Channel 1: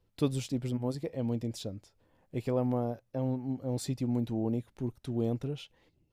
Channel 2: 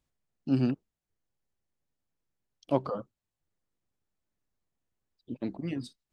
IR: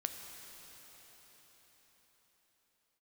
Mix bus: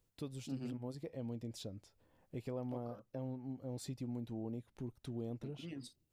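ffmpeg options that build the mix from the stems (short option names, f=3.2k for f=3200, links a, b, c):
-filter_complex "[0:a]dynaudnorm=f=140:g=9:m=6dB,volume=-9.5dB,asplit=2[a][b];[1:a]highshelf=f=7.1k:g=11,volume=-4dB[c];[b]apad=whole_len=270025[d];[c][d]sidechaincompress=threshold=-39dB:ratio=8:attack=16:release=1010[e];[a][e]amix=inputs=2:normalize=0,acompressor=threshold=-45dB:ratio=2"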